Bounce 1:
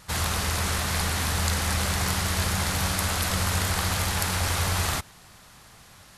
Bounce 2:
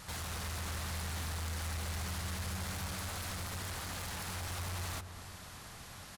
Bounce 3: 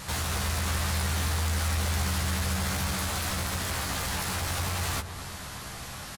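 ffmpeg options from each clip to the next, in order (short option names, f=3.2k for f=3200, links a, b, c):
-filter_complex "[0:a]acompressor=threshold=-37dB:ratio=3,asoftclip=type=tanh:threshold=-38.5dB,asplit=2[a][b];[b]adelay=223,lowpass=f=1k:p=1,volume=-8dB,asplit=2[c][d];[d]adelay=223,lowpass=f=1k:p=1,volume=0.49,asplit=2[e][f];[f]adelay=223,lowpass=f=1k:p=1,volume=0.49,asplit=2[g][h];[h]adelay=223,lowpass=f=1k:p=1,volume=0.49,asplit=2[i][j];[j]adelay=223,lowpass=f=1k:p=1,volume=0.49,asplit=2[k][l];[l]adelay=223,lowpass=f=1k:p=1,volume=0.49[m];[a][c][e][g][i][k][m]amix=inputs=7:normalize=0,volume=1dB"
-filter_complex "[0:a]asplit=2[a][b];[b]adelay=15,volume=-5dB[c];[a][c]amix=inputs=2:normalize=0,volume=9dB"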